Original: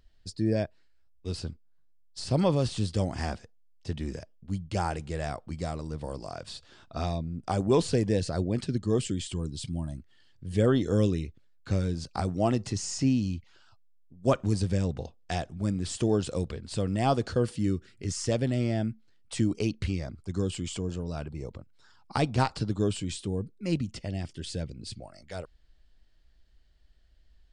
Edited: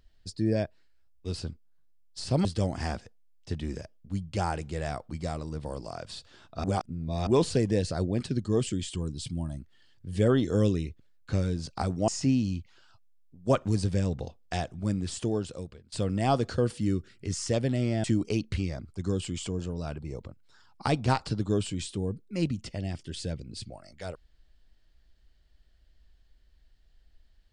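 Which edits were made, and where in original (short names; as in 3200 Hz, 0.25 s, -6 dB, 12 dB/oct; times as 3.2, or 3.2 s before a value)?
2.45–2.83 cut
7.02–7.65 reverse
12.46–12.86 cut
15.75–16.7 fade out, to -22.5 dB
18.82–19.34 cut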